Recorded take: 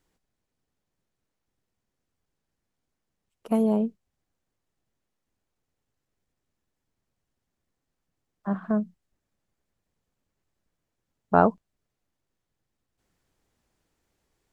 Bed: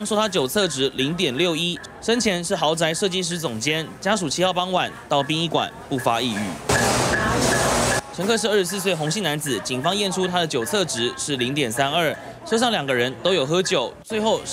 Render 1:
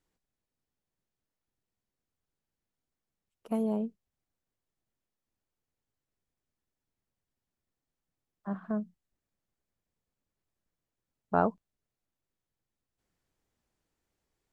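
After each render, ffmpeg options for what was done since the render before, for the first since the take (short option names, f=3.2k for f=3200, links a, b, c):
-af "volume=-7.5dB"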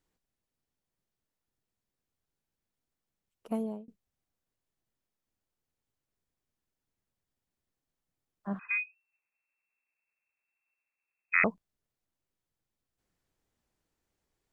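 -filter_complex "[0:a]asettb=1/sr,asplit=3[a][b][c];[a]atrim=end=8.594[d];[b]atrim=start=8.59:end=11.44,asetpts=PTS-STARTPTS,afade=t=in:d=0.004:c=qsin,afade=t=out:st=2.846:d=0.004:c=qsin,lowpass=f=2.3k:t=q:w=0.5098,lowpass=f=2.3k:t=q:w=0.6013,lowpass=f=2.3k:t=q:w=0.9,lowpass=f=2.3k:t=q:w=2.563,afreqshift=-2700[e];[c]atrim=start=11.436[f];[d][e]acrossfade=d=0.004:c1=hsin:c2=qsin[g];[g][f]acrossfade=d=0.004:c1=qsin:c2=hsin,asplit=2[h][i];[h]atrim=end=3.88,asetpts=PTS-STARTPTS,afade=t=out:st=3.48:d=0.4[j];[i]atrim=start=3.88,asetpts=PTS-STARTPTS,afade=t=in:d=0.004:c=hsin[k];[j][k]concat=n=2:v=0:a=1"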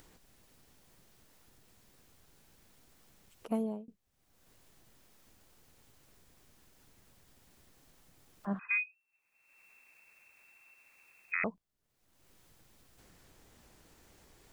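-af "alimiter=limit=-19.5dB:level=0:latency=1:release=259,acompressor=mode=upward:threshold=-43dB:ratio=2.5"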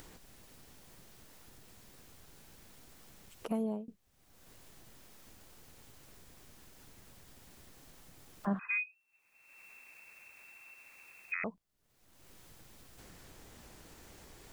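-af "acontrast=68,alimiter=level_in=0.5dB:limit=-24dB:level=0:latency=1:release=494,volume=-0.5dB"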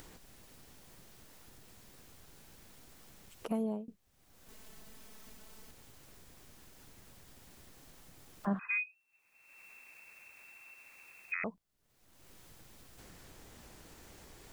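-filter_complex "[0:a]asettb=1/sr,asplit=3[a][b][c];[a]atrim=end=4.484[d];[b]atrim=start=4.48:end=5.71,asetpts=PTS-STARTPTS,afade=t=in:d=0.004:c=qsin,afade=t=out:st=1.226:d=0.004:c=qsin,aecho=1:1:4.6:0.88,atrim=end_sample=54243[e];[c]atrim=start=5.706[f];[d][e]acrossfade=d=0.004:c1=hsin:c2=qsin[g];[g][f]acrossfade=d=0.004:c1=qsin:c2=hsin"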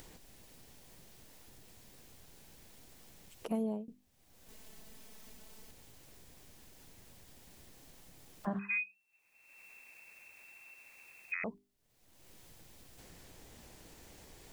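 -af "equalizer=f=1.3k:w=2:g=-5,bandreject=f=50:t=h:w=6,bandreject=f=100:t=h:w=6,bandreject=f=150:t=h:w=6,bandreject=f=200:t=h:w=6,bandreject=f=250:t=h:w=6,bandreject=f=300:t=h:w=6,bandreject=f=350:t=h:w=6,bandreject=f=400:t=h:w=6"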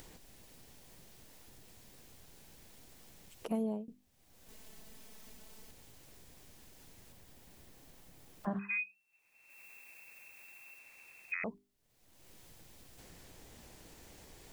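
-filter_complex "[0:a]asettb=1/sr,asplit=3[a][b][c];[a]atrim=end=7.124[d];[b]atrim=start=7.12:end=8.79,asetpts=PTS-STARTPTS,afade=t=in:d=0.004:c=qsin,afade=t=out:st=1.666:d=0.004:c=qsin,equalizer=f=6.4k:w=0.38:g=-3[e];[c]atrim=start=8.786[f];[d][e]acrossfade=d=0.004:c1=hsin:c2=qsin[g];[g][f]acrossfade=d=0.004:c1=qsin:c2=hsin,asettb=1/sr,asplit=3[h][i][j];[h]atrim=end=9.504[k];[i]atrim=start=9.5:end=10.79,asetpts=PTS-STARTPTS,afade=t=in:d=0.004:c=qsin,afade=t=out:st=1.286:d=0.004:c=qsin,highshelf=f=12k:g=9[l];[j]atrim=start=10.786[m];[k][l]acrossfade=d=0.004:c1=hsin:c2=qsin[n];[n][m]acrossfade=d=0.004:c1=qsin:c2=hsin"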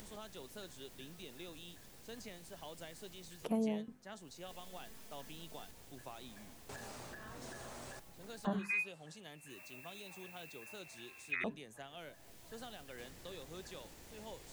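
-filter_complex "[1:a]volume=-30.5dB[a];[0:a][a]amix=inputs=2:normalize=0"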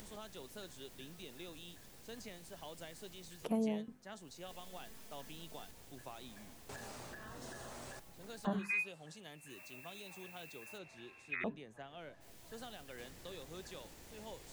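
-filter_complex "[0:a]asettb=1/sr,asplit=3[a][b][c];[a]atrim=end=7.264[d];[b]atrim=start=7.26:end=7.72,asetpts=PTS-STARTPTS,afade=t=in:d=0.004:c=qsin,afade=t=out:st=0.456:d=0.004:c=qsin,bandreject=f=2.3k:w=8.4[e];[c]atrim=start=7.716[f];[d][e]acrossfade=d=0.004:c1=hsin:c2=qsin[g];[g][f]acrossfade=d=0.004:c1=qsin:c2=hsin,asplit=3[h][i][j];[h]afade=t=out:st=10.77:d=0.02[k];[i]aemphasis=mode=reproduction:type=75fm,afade=t=in:st=10.77:d=0.02,afade=t=out:st=12.2:d=0.02[l];[j]afade=t=in:st=12.2:d=0.02[m];[k][l][m]amix=inputs=3:normalize=0"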